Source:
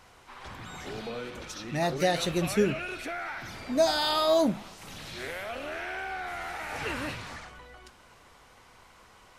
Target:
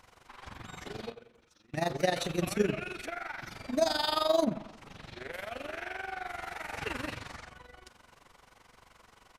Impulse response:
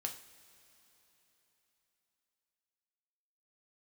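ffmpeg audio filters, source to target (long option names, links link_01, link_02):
-filter_complex "[0:a]tremolo=f=23:d=0.824,asettb=1/sr,asplit=3[link_01][link_02][link_03];[link_01]atrim=end=1.124[link_04];[link_02]atrim=start=1.12:end=2.65,asetpts=PTS-STARTPTS,afade=type=in:duration=0.004:curve=qsin,afade=type=out:start_time=1.526:duration=0.004:curve=qsin,agate=range=-21dB:threshold=-35dB:ratio=16:detection=peak[link_05];[link_03]atrim=start=2.646[link_06];[link_04][link_05]acrossfade=duration=0.004:curve1=hsin:curve2=qsin[link_07];[link_07][link_06]acrossfade=duration=0.004:curve1=qsin:curve2=hsin,asettb=1/sr,asplit=3[link_08][link_09][link_10];[link_08]atrim=end=4.444[link_11];[link_09]atrim=start=4.44:end=5.33,asetpts=PTS-STARTPTS,afade=type=in:duration=0.004:curve=qsin,afade=type=out:start_time=0.886:duration=0.004:curve=qsin,aemphasis=mode=reproduction:type=75kf[link_12];[link_10]atrim=start=5.326[link_13];[link_11][link_12]acrossfade=duration=0.004:curve1=hsin:curve2=qsin[link_14];[link_14][link_13]acrossfade=duration=0.004:curve1=qsin:curve2=hsin,asplit=2[link_15][link_16];[link_16]adelay=91,lowpass=frequency=2200:poles=1,volume=-14dB,asplit=2[link_17][link_18];[link_18]adelay=91,lowpass=frequency=2200:poles=1,volume=0.46,asplit=2[link_19][link_20];[link_20]adelay=91,lowpass=frequency=2200:poles=1,volume=0.46,asplit=2[link_21][link_22];[link_22]adelay=91,lowpass=frequency=2200:poles=1,volume=0.46[link_23];[link_15][link_17][link_19][link_21][link_23]amix=inputs=5:normalize=0"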